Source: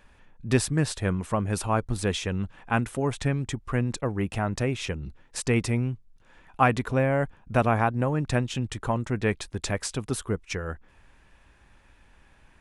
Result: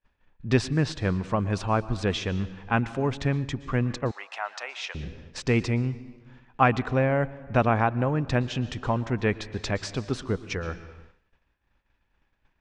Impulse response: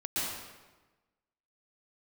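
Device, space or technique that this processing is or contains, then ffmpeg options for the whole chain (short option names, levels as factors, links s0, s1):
compressed reverb return: -filter_complex "[0:a]asplit=2[s0][s1];[1:a]atrim=start_sample=2205[s2];[s1][s2]afir=irnorm=-1:irlink=0,acompressor=threshold=0.0891:ratio=6,volume=0.141[s3];[s0][s3]amix=inputs=2:normalize=0,asettb=1/sr,asplit=3[s4][s5][s6];[s4]atrim=end=4.114[s7];[s5]atrim=start=4.11:end=4.95,asetpts=PTS-STARTPTS,afade=t=in:d=0.004:c=qsin,afade=t=out:st=0.836:d=0.004:c=qsin,highpass=f=750:w=0.5412,highpass=f=750:w=1.3066[s8];[s6]atrim=start=4.946[s9];[s7][s8]acrossfade=d=0.004:c1=hsin:c2=qsin[s10];[s10][s9]acrossfade=d=0.004:c1=qsin:c2=hsin,agate=range=0.0224:threshold=0.00708:ratio=3:detection=peak,lowpass=f=5800:w=0.5412,lowpass=f=5800:w=1.3066"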